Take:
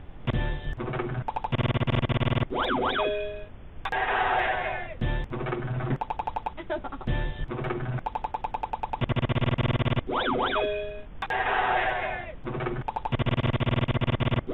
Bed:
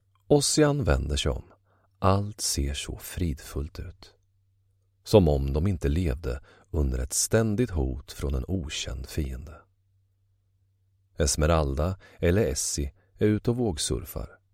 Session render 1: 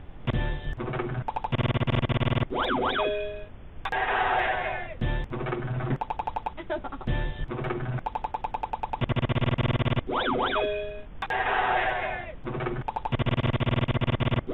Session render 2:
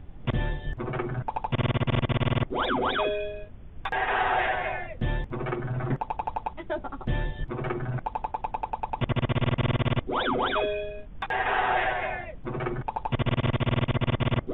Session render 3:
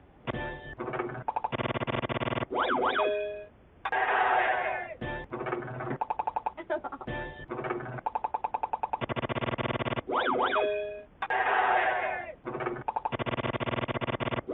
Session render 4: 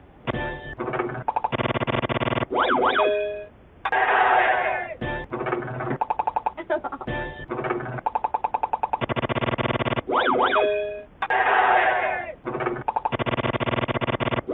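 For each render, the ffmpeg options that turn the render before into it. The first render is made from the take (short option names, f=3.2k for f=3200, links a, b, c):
-af anull
-af "afftdn=nr=7:nf=-44"
-filter_complex "[0:a]highpass=49,acrossover=split=290 3100:gain=0.251 1 0.251[a][b][c];[a][b][c]amix=inputs=3:normalize=0"
-af "volume=7dB"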